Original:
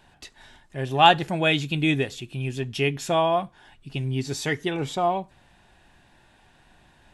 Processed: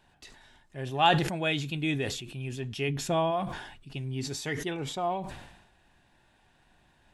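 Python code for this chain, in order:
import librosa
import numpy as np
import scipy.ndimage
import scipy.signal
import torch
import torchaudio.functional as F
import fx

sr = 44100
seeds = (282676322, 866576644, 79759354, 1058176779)

y = fx.low_shelf(x, sr, hz=350.0, db=8.5, at=(2.88, 3.3), fade=0.02)
y = fx.sustainer(y, sr, db_per_s=59.0)
y = y * librosa.db_to_amplitude(-7.5)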